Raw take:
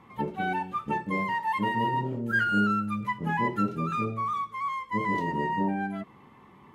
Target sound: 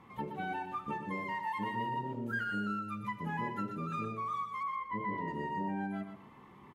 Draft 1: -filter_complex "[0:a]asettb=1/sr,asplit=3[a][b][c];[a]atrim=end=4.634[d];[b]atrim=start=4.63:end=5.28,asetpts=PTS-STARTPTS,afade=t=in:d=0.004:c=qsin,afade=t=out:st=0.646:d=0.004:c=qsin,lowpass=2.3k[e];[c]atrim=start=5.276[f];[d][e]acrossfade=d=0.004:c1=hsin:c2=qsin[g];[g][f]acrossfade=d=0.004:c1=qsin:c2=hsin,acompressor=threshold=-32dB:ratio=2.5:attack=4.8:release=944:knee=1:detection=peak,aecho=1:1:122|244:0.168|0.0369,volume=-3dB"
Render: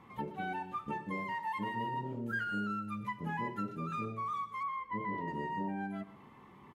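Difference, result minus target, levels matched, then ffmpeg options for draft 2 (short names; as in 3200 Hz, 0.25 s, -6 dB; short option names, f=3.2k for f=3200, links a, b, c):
echo-to-direct -8 dB
-filter_complex "[0:a]asettb=1/sr,asplit=3[a][b][c];[a]atrim=end=4.634[d];[b]atrim=start=4.63:end=5.28,asetpts=PTS-STARTPTS,afade=t=in:d=0.004:c=qsin,afade=t=out:st=0.646:d=0.004:c=qsin,lowpass=2.3k[e];[c]atrim=start=5.276[f];[d][e]acrossfade=d=0.004:c1=hsin:c2=qsin[g];[g][f]acrossfade=d=0.004:c1=qsin:c2=hsin,acompressor=threshold=-32dB:ratio=2.5:attack=4.8:release=944:knee=1:detection=peak,aecho=1:1:122|244|366:0.422|0.0928|0.0204,volume=-3dB"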